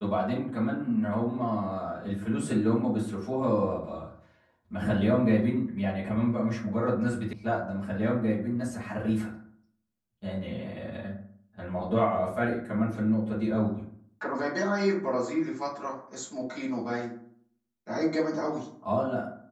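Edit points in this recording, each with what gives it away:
7.33 sound cut off

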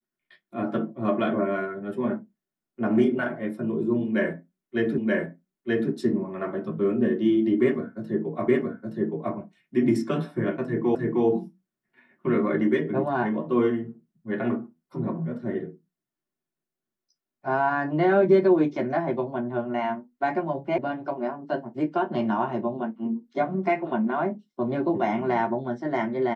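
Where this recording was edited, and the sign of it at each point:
4.98 repeat of the last 0.93 s
8.48 repeat of the last 0.87 s
10.95 repeat of the last 0.31 s
20.78 sound cut off

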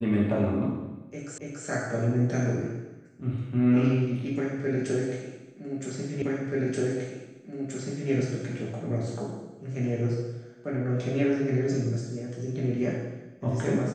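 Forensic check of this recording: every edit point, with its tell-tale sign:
1.38 repeat of the last 0.28 s
6.22 repeat of the last 1.88 s

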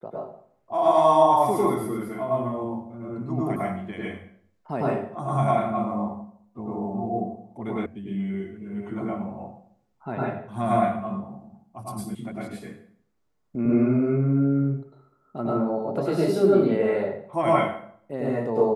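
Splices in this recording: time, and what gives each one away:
7.86 sound cut off
12.15 sound cut off

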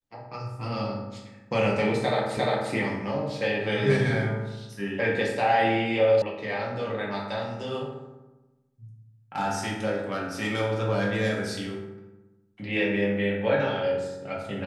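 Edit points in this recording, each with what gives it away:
2.37 repeat of the last 0.35 s
6.22 sound cut off

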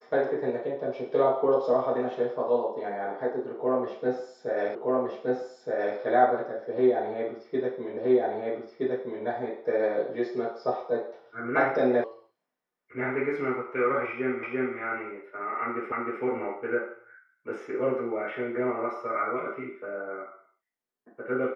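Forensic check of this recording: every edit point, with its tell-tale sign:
4.75 repeat of the last 1.22 s
7.97 repeat of the last 1.27 s
12.04 sound cut off
14.43 repeat of the last 0.34 s
15.92 repeat of the last 0.31 s

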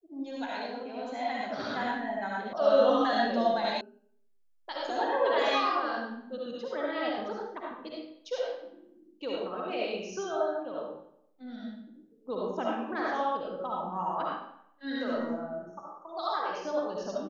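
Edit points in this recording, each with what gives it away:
2.53 sound cut off
3.81 sound cut off

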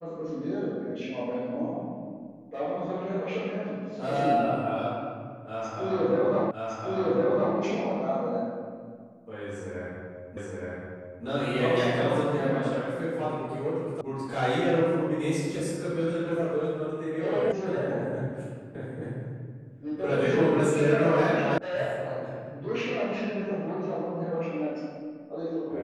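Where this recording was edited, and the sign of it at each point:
6.51 repeat of the last 1.06 s
10.37 repeat of the last 0.87 s
14.01 sound cut off
17.52 sound cut off
21.58 sound cut off

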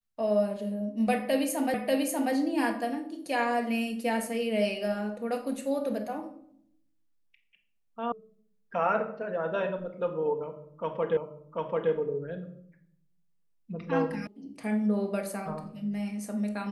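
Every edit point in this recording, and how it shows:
1.74 repeat of the last 0.59 s
8.12 sound cut off
11.17 repeat of the last 0.74 s
14.27 sound cut off

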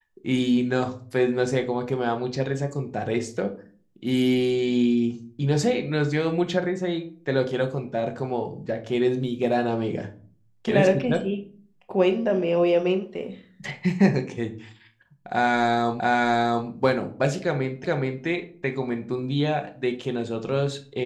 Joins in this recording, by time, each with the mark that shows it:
16 repeat of the last 0.68 s
17.84 repeat of the last 0.42 s

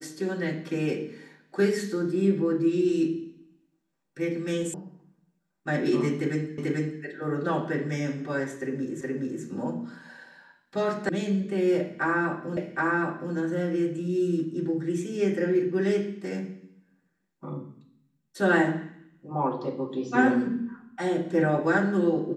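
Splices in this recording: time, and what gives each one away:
4.74 sound cut off
6.58 repeat of the last 0.44 s
9.01 repeat of the last 0.42 s
11.09 sound cut off
12.57 repeat of the last 0.77 s

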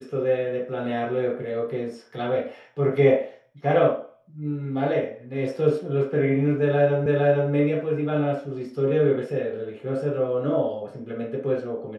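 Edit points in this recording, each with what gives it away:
7.06 repeat of the last 0.46 s

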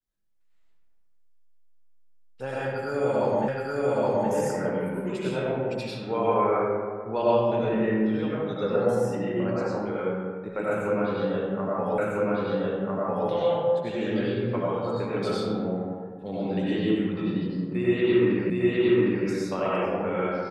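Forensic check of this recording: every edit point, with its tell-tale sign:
3.48 repeat of the last 0.82 s
11.98 repeat of the last 1.3 s
18.5 repeat of the last 0.76 s

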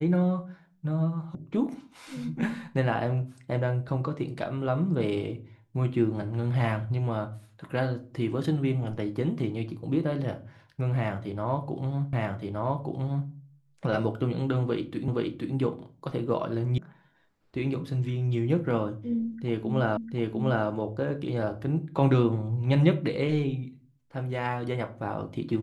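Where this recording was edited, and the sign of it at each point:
1.35 sound cut off
12.13 repeat of the last 1.17 s
15.08 repeat of the last 0.47 s
16.78 sound cut off
19.97 repeat of the last 0.7 s

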